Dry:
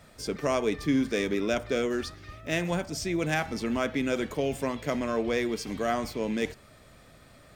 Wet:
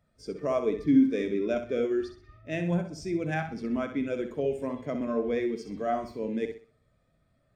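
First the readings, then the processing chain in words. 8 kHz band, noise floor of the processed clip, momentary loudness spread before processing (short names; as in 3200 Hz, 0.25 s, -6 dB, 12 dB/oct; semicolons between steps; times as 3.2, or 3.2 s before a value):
-13.5 dB, -70 dBFS, 5 LU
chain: on a send: flutter echo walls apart 10.9 m, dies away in 0.56 s; on the sum: spectral expander 1.5:1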